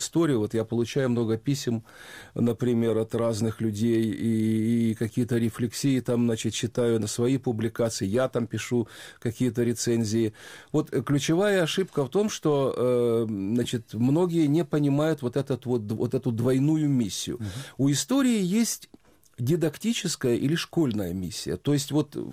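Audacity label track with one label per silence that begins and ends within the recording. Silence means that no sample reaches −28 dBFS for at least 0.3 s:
1.790000	2.360000	silence
8.830000	9.220000	silence
10.290000	10.740000	silence
18.750000	19.400000	silence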